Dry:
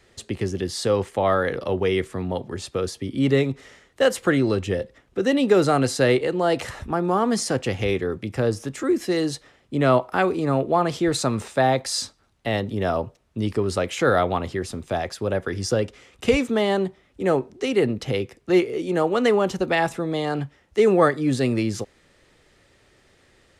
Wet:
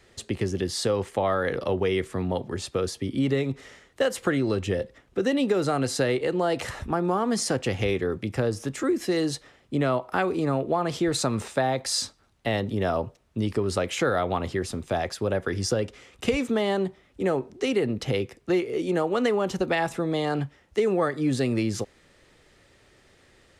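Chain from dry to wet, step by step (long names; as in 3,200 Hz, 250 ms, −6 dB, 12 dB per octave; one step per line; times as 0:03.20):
downward compressor, threshold −20 dBFS, peak gain reduction 8.5 dB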